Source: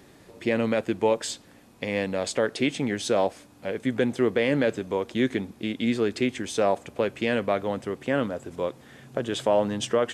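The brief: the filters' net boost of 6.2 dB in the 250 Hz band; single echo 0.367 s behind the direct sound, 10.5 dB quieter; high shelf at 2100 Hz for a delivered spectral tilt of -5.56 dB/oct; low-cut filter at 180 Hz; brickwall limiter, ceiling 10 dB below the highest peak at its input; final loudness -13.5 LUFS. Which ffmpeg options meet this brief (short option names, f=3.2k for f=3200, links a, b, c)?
-af "highpass=180,equalizer=f=250:t=o:g=8.5,highshelf=f=2.1k:g=-8,alimiter=limit=-18.5dB:level=0:latency=1,aecho=1:1:367:0.299,volume=15dB"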